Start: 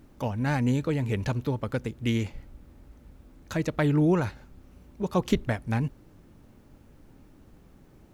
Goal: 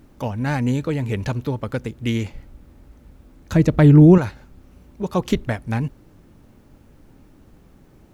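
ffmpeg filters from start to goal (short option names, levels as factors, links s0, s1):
-filter_complex "[0:a]asettb=1/sr,asplit=3[s0][s1][s2];[s0]atrim=end=3.524[s3];[s1]atrim=start=3.52:end=4.18,asetpts=PTS-STARTPTS,afade=t=in:d=0.004:c=qsin,afade=t=out:st=0.656:d=0.004:c=qsin,lowshelf=f=410:g=12[s4];[s2]atrim=start=4.176[s5];[s3][s4]acrossfade=d=0.004:c1=hsin:c2=qsin[s6];[s6][s5]acrossfade=d=0.004:c1=qsin:c2=hsin,volume=1.58"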